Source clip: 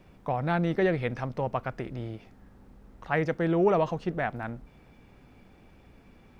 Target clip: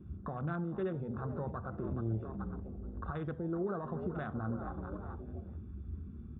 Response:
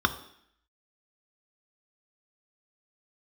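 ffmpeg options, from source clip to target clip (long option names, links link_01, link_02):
-filter_complex "[0:a]lowpass=2400,equalizer=frequency=80:width=4.1:gain=11.5,asplit=5[link_01][link_02][link_03][link_04][link_05];[link_02]adelay=428,afreqshift=68,volume=-16dB[link_06];[link_03]adelay=856,afreqshift=136,volume=-23.7dB[link_07];[link_04]adelay=1284,afreqshift=204,volume=-31.5dB[link_08];[link_05]adelay=1712,afreqshift=272,volume=-39.2dB[link_09];[link_01][link_06][link_07][link_08][link_09]amix=inputs=5:normalize=0,acompressor=threshold=-36dB:ratio=6,alimiter=level_in=10.5dB:limit=-24dB:level=0:latency=1:release=16,volume=-10.5dB,afwtdn=0.00398,asplit=2[link_10][link_11];[1:a]atrim=start_sample=2205,atrim=end_sample=3969,lowshelf=frequency=150:gain=8[link_12];[link_11][link_12]afir=irnorm=-1:irlink=0,volume=-10.5dB[link_13];[link_10][link_13]amix=inputs=2:normalize=0,volume=-1.5dB"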